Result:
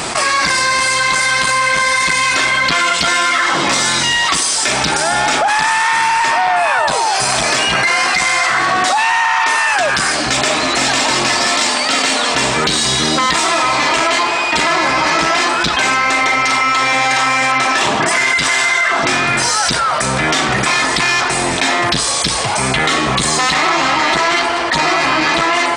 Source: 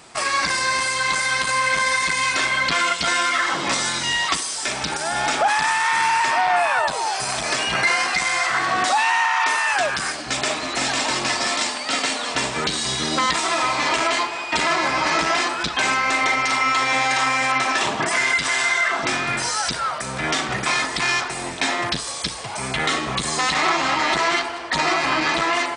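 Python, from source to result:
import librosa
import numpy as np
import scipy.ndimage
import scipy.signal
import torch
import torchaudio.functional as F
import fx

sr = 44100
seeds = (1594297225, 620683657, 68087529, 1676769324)

p1 = 10.0 ** (-19.0 / 20.0) * np.tanh(x / 10.0 ** (-19.0 / 20.0))
p2 = x + (p1 * librosa.db_to_amplitude(-9.0))
p3 = fx.env_flatten(p2, sr, amount_pct=70)
y = p3 * librosa.db_to_amplitude(1.5)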